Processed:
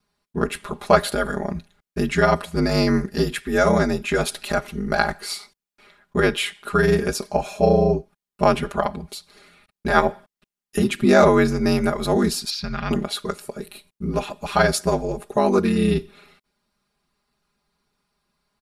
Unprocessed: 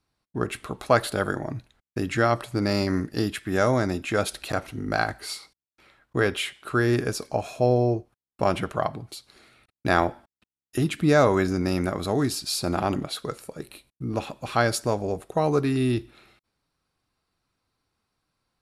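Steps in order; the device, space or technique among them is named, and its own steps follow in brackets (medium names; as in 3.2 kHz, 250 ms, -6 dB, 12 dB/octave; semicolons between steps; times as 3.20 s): 12.50–12.91 s: FFT filter 160 Hz 0 dB, 240 Hz -17 dB, 890 Hz -14 dB, 1.6 kHz 0 dB, 5.6 kHz -4 dB, 8.5 kHz -27 dB, 13 kHz -20 dB; ring-modulated robot voice (ring modulator 48 Hz; comb 4.9 ms, depth 95%); trim +4.5 dB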